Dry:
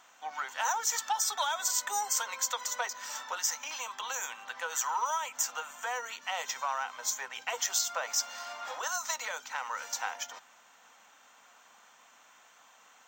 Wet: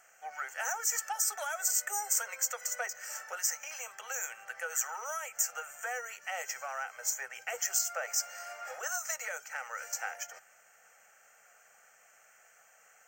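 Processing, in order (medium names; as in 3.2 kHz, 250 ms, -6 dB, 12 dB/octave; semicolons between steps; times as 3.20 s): peaking EQ 11 kHz +12 dB 0.74 oct; static phaser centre 1 kHz, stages 6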